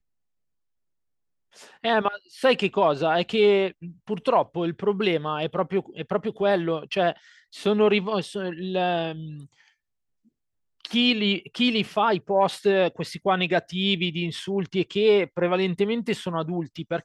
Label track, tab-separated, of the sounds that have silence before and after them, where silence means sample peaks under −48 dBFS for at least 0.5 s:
1.530000	9.680000	sound